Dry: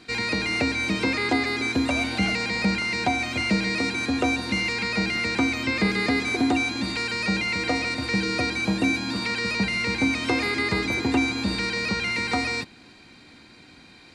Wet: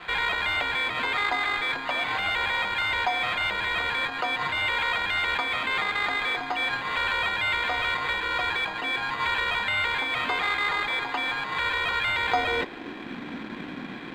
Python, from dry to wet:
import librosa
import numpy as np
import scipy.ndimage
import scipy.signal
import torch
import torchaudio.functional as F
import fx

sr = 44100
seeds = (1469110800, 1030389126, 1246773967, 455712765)

p1 = fx.over_compress(x, sr, threshold_db=-36.0, ratio=-1.0)
p2 = x + (p1 * librosa.db_to_amplitude(3.0))
p3 = fx.filter_sweep_highpass(p2, sr, from_hz=1000.0, to_hz=200.0, start_s=12.03, end_s=13.19, q=1.7)
p4 = fx.sample_hold(p3, sr, seeds[0], rate_hz=5700.0, jitter_pct=0)
p5 = np.sign(p4) * np.maximum(np.abs(p4) - 10.0 ** (-44.5 / 20.0), 0.0)
y = fx.air_absorb(p5, sr, metres=240.0)